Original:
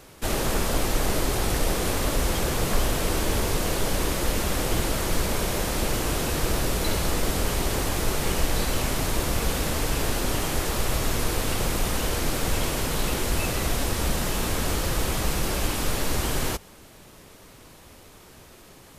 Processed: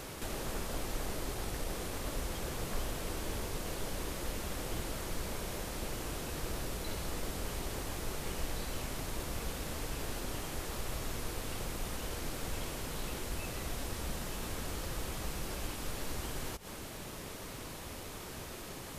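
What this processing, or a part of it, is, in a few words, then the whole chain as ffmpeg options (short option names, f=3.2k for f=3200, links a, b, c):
de-esser from a sidechain: -filter_complex "[0:a]asplit=2[a][b];[b]highpass=5.3k,apad=whole_len=837046[c];[a][c]sidechaincompress=threshold=-50dB:ratio=8:attack=1.6:release=97,volume=5dB"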